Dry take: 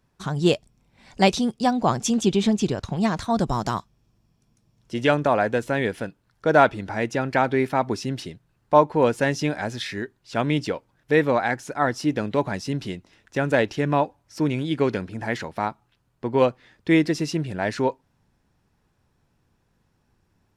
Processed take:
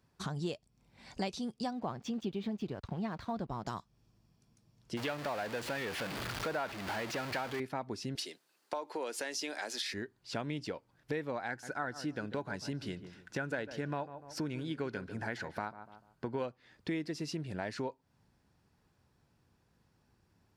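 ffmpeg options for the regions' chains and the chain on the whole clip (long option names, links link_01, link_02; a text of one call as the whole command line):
ffmpeg -i in.wav -filter_complex "[0:a]asettb=1/sr,asplit=3[link_01][link_02][link_03];[link_01]atrim=end=1.734[link_04];[link_02]atrim=start=1.73:end=3.67,asetpts=PTS-STARTPTS,afade=type=in:duration=0.004:curve=qsin,afade=type=out:start_time=1.936:duration=0.004:curve=qsin,lowpass=3000,aeval=exprs='sgn(val(0))*max(abs(val(0))-0.00355,0)':channel_layout=same[link_05];[link_03]atrim=start=3.666[link_06];[link_04][link_05]acrossfade=duration=0.004:curve1=hsin:curve2=qsin[link_07];[link_07][link_06]acrossfade=duration=0.004:curve1=qsin:curve2=hsin,asettb=1/sr,asplit=3[link_08][link_09][link_10];[link_08]atrim=end=4.974[link_11];[link_09]atrim=start=4.97:end=7.6,asetpts=PTS-STARTPTS,afade=type=in:duration=0.004:curve=qsin,afade=type=out:start_time=2.626:duration=0.004:curve=qsin,aeval=exprs='val(0)+0.5*0.126*sgn(val(0))':channel_layout=same,acrossover=split=4100[link_12][link_13];[link_13]acompressor=threshold=-37dB:ratio=4:attack=1:release=60[link_14];[link_12][link_14]amix=inputs=2:normalize=0,lowshelf=frequency=470:gain=-9.5[link_15];[link_10]atrim=start=7.596[link_16];[link_11][link_15]acrossfade=duration=0.004:curve1=hsin:curve2=qsin[link_17];[link_17][link_16]acrossfade=duration=0.004:curve1=qsin:curve2=hsin,asettb=1/sr,asplit=3[link_18][link_19][link_20];[link_18]atrim=end=8.154[link_21];[link_19]atrim=start=8.15:end=9.94,asetpts=PTS-STARTPTS,afade=type=in:duration=0.004:curve=qsin,afade=type=out:start_time=1.786:duration=0.004:curve=qsin,highpass=frequency=300:width=0.5412,highpass=frequency=300:width=1.3066,highshelf=frequency=2500:gain=11.5,acompressor=threshold=-23dB:ratio=2.5:attack=3.2:release=140:knee=1:detection=peak[link_22];[link_20]atrim=start=9.936[link_23];[link_21][link_22]acrossfade=duration=0.004:curve1=hsin:curve2=qsin[link_24];[link_24][link_23]acrossfade=duration=0.004:curve1=qsin:curve2=hsin,asettb=1/sr,asplit=3[link_25][link_26][link_27];[link_25]atrim=end=11.484[link_28];[link_26]atrim=start=11.48:end=16.46,asetpts=PTS-STARTPTS,afade=type=in:duration=0.004:curve=qsin,afade=type=out:start_time=4.976:duration=0.004:curve=qsin,equalizer=frequency=1500:width=7.1:gain=10.5,asplit=2[link_29][link_30];[link_30]adelay=147,lowpass=frequency=1400:poles=1,volume=-14.5dB,asplit=2[link_31][link_32];[link_32]adelay=147,lowpass=frequency=1400:poles=1,volume=0.29,asplit=2[link_33][link_34];[link_34]adelay=147,lowpass=frequency=1400:poles=1,volume=0.29[link_35];[link_29][link_31][link_33][link_35]amix=inputs=4:normalize=0,atrim=end_sample=219618[link_36];[link_27]atrim=start=16.456[link_37];[link_28][link_36]acrossfade=duration=0.004:curve1=hsin:curve2=qsin[link_38];[link_38][link_37]acrossfade=duration=0.004:curve1=qsin:curve2=hsin,equalizer=frequency=4600:width=5.9:gain=5,acompressor=threshold=-33dB:ratio=4,highpass=43,volume=-3.5dB" out.wav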